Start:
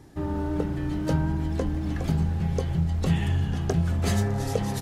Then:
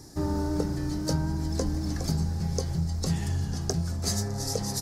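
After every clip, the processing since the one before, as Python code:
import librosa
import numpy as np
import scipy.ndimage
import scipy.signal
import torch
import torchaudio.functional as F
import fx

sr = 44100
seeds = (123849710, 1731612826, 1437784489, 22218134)

y = fx.high_shelf_res(x, sr, hz=3900.0, db=9.0, q=3.0)
y = fx.rider(y, sr, range_db=10, speed_s=0.5)
y = F.gain(torch.from_numpy(y), -3.5).numpy()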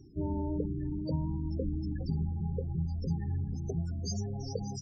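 y = fx.spec_topn(x, sr, count=16)
y = F.gain(torch.from_numpy(y), -4.5).numpy()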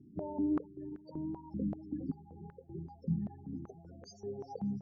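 y = fx.filter_held_bandpass(x, sr, hz=5.2, low_hz=210.0, high_hz=1600.0)
y = F.gain(torch.from_numpy(y), 7.0).numpy()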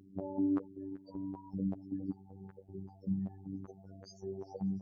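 y = fx.robotise(x, sr, hz=96.2)
y = F.gain(torch.from_numpy(y), 1.5).numpy()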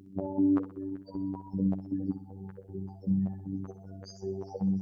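y = fx.echo_feedback(x, sr, ms=63, feedback_pct=46, wet_db=-12)
y = F.gain(torch.from_numpy(y), 6.0).numpy()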